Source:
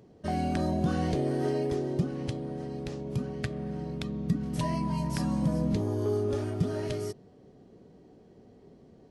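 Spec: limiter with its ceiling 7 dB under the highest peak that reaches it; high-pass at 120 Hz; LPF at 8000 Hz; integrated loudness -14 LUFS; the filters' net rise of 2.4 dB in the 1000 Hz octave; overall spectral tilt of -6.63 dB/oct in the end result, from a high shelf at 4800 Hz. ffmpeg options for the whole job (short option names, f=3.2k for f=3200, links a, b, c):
-af "highpass=120,lowpass=8k,equalizer=f=1k:t=o:g=3.5,highshelf=f=4.8k:g=-3,volume=19dB,alimiter=limit=-4dB:level=0:latency=1"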